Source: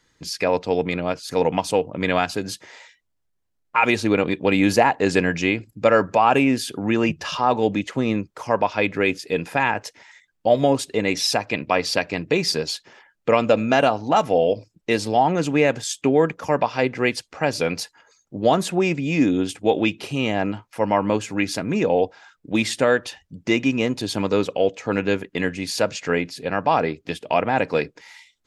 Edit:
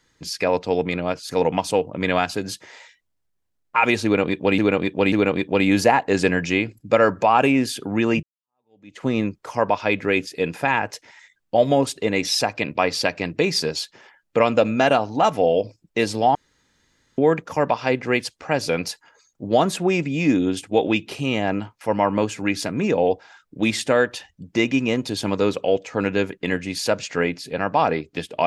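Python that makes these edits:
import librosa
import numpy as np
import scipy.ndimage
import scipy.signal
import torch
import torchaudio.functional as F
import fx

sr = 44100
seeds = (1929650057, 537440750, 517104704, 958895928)

y = fx.edit(x, sr, fx.repeat(start_s=4.04, length_s=0.54, count=3),
    fx.fade_in_span(start_s=7.15, length_s=0.81, curve='exp'),
    fx.room_tone_fill(start_s=15.27, length_s=0.83), tone=tone)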